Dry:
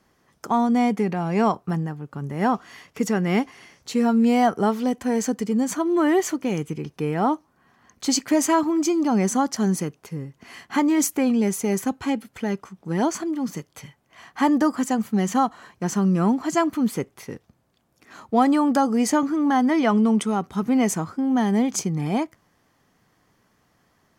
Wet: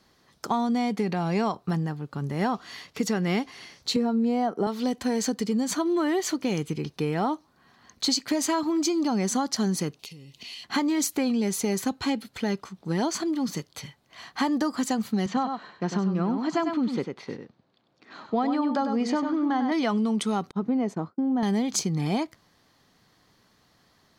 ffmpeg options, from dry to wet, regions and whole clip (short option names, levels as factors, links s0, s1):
-filter_complex "[0:a]asettb=1/sr,asplit=3[s0][s1][s2];[s0]atrim=end=3.964[s3];[s1]atrim=start=3.96:end=4.67,asetpts=PTS-STARTPTS,afade=t=in:d=0.004:c=qsin,afade=t=out:st=0.706:d=0.004:c=qsin,highpass=250,tiltshelf=f=1200:g=8[s4];[s2]atrim=start=4.666[s5];[s3][s4]acrossfade=d=0.004:c1=hsin:c2=qsin[s6];[s6][s5]acrossfade=d=0.004:c1=qsin:c2=hsin,asettb=1/sr,asplit=3[s7][s8][s9];[s7]atrim=end=9.994[s10];[s8]atrim=start=9.99:end=10.64,asetpts=PTS-STARTPTS,afade=t=in:d=0.004:c=qsin,afade=t=out:st=0.646:d=0.004:c=qsin,highshelf=f=2100:t=q:w=3:g=9.5,acompressor=threshold=0.00794:ratio=10:attack=3.2:release=140:knee=1:detection=peak[s11];[s9]atrim=start=10.636[s12];[s10][s11]acrossfade=d=0.004:c1=hsin:c2=qsin[s13];[s13][s12]acrossfade=d=0.004:c1=qsin:c2=hsin,asettb=1/sr,asplit=3[s14][s15][s16];[s14]atrim=end=15.264[s17];[s15]atrim=start=15.26:end=19.72,asetpts=PTS-STARTPTS,afade=t=in:d=0.004:c=qsin,afade=t=out:st=4.456:d=0.004:c=qsin,highpass=150,lowpass=4900,highshelf=f=3500:g=-9.5,aecho=1:1:98:0.422,atrim=end_sample=196686[s18];[s16]atrim=start=19.716[s19];[s17][s18]acrossfade=d=0.004:c1=hsin:c2=qsin[s20];[s20][s19]acrossfade=d=0.004:c1=qsin:c2=hsin,asettb=1/sr,asplit=3[s21][s22][s23];[s21]atrim=end=20.514[s24];[s22]atrim=start=20.51:end=21.43,asetpts=PTS-STARTPTS,afade=t=in:d=0.004:c=qsin,afade=t=out:st=0.916:d=0.004:c=qsin,bandpass=f=380:t=q:w=0.62,agate=range=0.0224:threshold=0.0224:ratio=3:release=100:detection=peak[s25];[s23]atrim=start=21.426[s26];[s24][s25]acrossfade=d=0.004:c1=hsin:c2=qsin[s27];[s27][s26]acrossfade=d=0.004:c1=qsin:c2=hsin,equalizer=f=4100:w=2.2:g=11.5,acompressor=threshold=0.0794:ratio=6"